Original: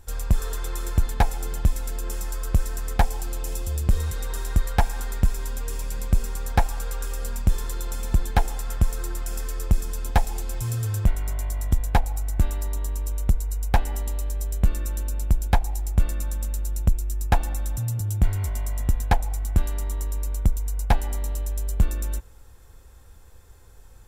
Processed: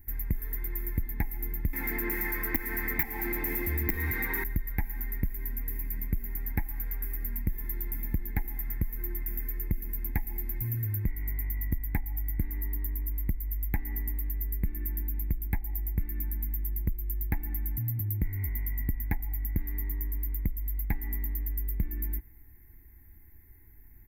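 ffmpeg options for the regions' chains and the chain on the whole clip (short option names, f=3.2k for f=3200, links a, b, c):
-filter_complex "[0:a]asettb=1/sr,asplit=3[a][b][c];[a]atrim=end=1.734[d];[b]atrim=start=1.73:end=4.44,asetpts=PTS-STARTPTS,afade=t=in:d=0.004:c=qsin,afade=t=out:st=2.706:d=0.004:c=qsin,asplit=2[e][f];[f]highpass=f=720:p=1,volume=28dB,asoftclip=type=tanh:threshold=-8.5dB[g];[e][g]amix=inputs=2:normalize=0,lowpass=f=2.4k:p=1,volume=-6dB,aeval=exprs='(mod(3.55*val(0)+1,2)-1)/3.55':c=same[h];[c]atrim=start=4.436[i];[d][h]acrossfade=d=0.004:c1=hsin:c2=qsin[j];[j][i]acrossfade=d=0.004:c1=qsin:c2=hsin,firequalizer=gain_entry='entry(150,0);entry(310,6);entry(560,-26);entry(810,-8);entry(1300,-17);entry(2000,10);entry(2900,-22);entry(4300,-20);entry(8700,-21);entry(13000,14)':delay=0.05:min_phase=1,acompressor=threshold=-20dB:ratio=6,volume=-5dB"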